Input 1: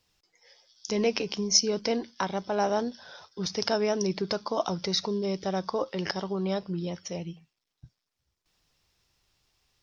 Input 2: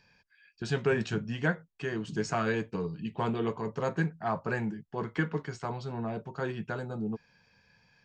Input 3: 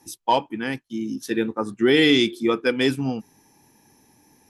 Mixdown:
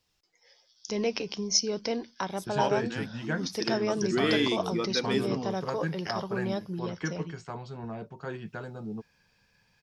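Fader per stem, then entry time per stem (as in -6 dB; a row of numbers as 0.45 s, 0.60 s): -3.0 dB, -3.5 dB, -10.0 dB; 0.00 s, 1.85 s, 2.30 s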